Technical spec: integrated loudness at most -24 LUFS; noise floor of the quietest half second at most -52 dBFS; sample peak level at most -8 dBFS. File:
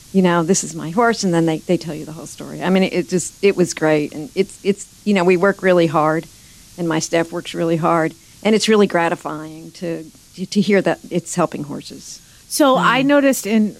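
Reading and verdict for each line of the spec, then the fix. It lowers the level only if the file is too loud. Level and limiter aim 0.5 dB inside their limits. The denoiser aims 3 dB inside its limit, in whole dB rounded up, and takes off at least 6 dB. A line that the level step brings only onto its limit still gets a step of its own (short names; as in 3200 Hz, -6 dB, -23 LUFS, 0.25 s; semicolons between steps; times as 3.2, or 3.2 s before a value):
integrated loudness -17.5 LUFS: fail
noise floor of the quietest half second -44 dBFS: fail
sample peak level -3.0 dBFS: fail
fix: denoiser 6 dB, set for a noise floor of -44 dBFS; gain -7 dB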